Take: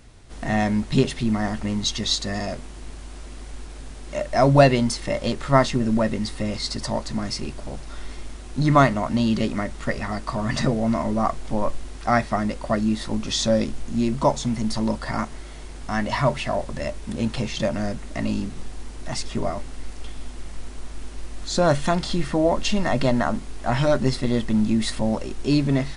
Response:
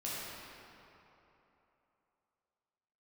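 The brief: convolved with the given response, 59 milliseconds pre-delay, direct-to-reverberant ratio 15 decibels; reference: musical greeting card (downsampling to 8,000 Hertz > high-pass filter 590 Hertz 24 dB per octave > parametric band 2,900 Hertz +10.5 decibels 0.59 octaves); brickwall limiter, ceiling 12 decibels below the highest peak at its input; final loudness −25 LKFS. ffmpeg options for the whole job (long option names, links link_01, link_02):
-filter_complex "[0:a]alimiter=limit=-14.5dB:level=0:latency=1,asplit=2[link_01][link_02];[1:a]atrim=start_sample=2205,adelay=59[link_03];[link_02][link_03]afir=irnorm=-1:irlink=0,volume=-18.5dB[link_04];[link_01][link_04]amix=inputs=2:normalize=0,aresample=8000,aresample=44100,highpass=frequency=590:width=0.5412,highpass=frequency=590:width=1.3066,equalizer=frequency=2900:width_type=o:width=0.59:gain=10.5,volume=4.5dB"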